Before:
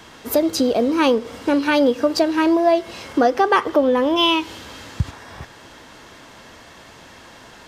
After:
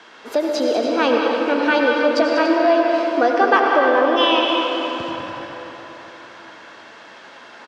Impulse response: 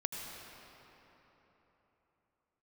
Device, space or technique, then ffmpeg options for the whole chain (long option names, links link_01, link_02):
station announcement: -filter_complex "[0:a]highpass=350,lowpass=4700,equalizer=frequency=1500:width_type=o:width=0.27:gain=5,aecho=1:1:195.3|288.6:0.316|0.251[link_01];[1:a]atrim=start_sample=2205[link_02];[link_01][link_02]afir=irnorm=-1:irlink=0"